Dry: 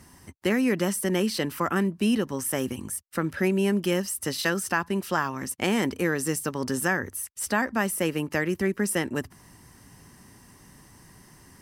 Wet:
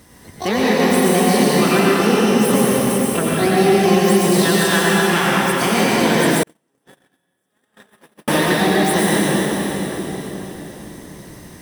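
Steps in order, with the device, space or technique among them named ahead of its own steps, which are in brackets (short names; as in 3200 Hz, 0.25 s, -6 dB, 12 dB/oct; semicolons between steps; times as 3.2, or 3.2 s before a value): shimmer-style reverb (harmoniser +12 st -4 dB; reverb RT60 4.3 s, pre-delay 84 ms, DRR -6.5 dB); 6.43–8.28 gate -12 dBFS, range -53 dB; gain +2.5 dB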